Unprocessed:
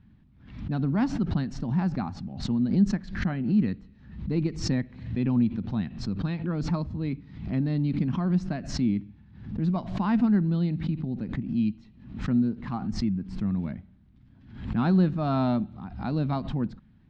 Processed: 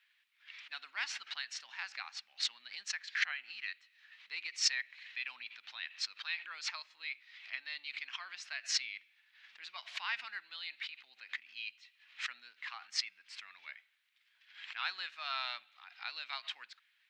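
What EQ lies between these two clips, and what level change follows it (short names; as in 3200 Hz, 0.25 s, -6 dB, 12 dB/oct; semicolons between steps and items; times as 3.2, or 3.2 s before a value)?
ladder high-pass 1800 Hz, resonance 35%; +12.5 dB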